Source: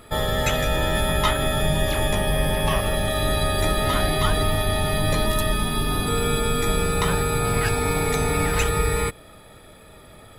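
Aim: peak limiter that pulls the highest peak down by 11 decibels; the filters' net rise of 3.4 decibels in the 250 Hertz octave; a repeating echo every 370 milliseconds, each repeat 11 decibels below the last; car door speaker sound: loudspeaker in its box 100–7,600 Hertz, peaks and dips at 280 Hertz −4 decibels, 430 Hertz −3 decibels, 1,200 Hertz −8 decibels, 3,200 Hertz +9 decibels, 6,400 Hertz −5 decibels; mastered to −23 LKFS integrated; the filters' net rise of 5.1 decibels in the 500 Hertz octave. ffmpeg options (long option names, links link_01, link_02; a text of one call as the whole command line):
ffmpeg -i in.wav -af "equalizer=frequency=250:width_type=o:gain=5.5,equalizer=frequency=500:width_type=o:gain=7,alimiter=limit=-16.5dB:level=0:latency=1,highpass=100,equalizer=frequency=280:width_type=q:width=4:gain=-4,equalizer=frequency=430:width_type=q:width=4:gain=-3,equalizer=frequency=1200:width_type=q:width=4:gain=-8,equalizer=frequency=3200:width_type=q:width=4:gain=9,equalizer=frequency=6400:width_type=q:width=4:gain=-5,lowpass=frequency=7600:width=0.5412,lowpass=frequency=7600:width=1.3066,aecho=1:1:370|740|1110:0.282|0.0789|0.0221,volume=3dB" out.wav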